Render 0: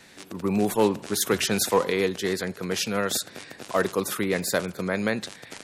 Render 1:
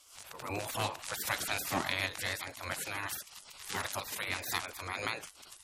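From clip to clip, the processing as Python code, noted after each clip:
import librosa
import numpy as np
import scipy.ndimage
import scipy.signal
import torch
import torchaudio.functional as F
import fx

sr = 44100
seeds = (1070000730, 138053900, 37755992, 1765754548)

y = fx.spec_gate(x, sr, threshold_db=-15, keep='weak')
y = fx.pre_swell(y, sr, db_per_s=100.0)
y = F.gain(torch.from_numpy(y), -1.0).numpy()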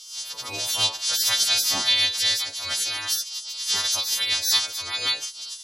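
y = fx.freq_snap(x, sr, grid_st=2)
y = fx.band_shelf(y, sr, hz=4400.0, db=13.5, octaves=1.3)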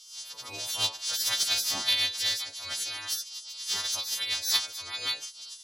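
y = fx.cheby_harmonics(x, sr, harmonics=(3,), levels_db=(-14,), full_scale_db=-7.0)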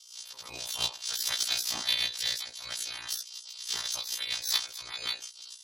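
y = x * np.sin(2.0 * np.pi * 30.0 * np.arange(len(x)) / sr)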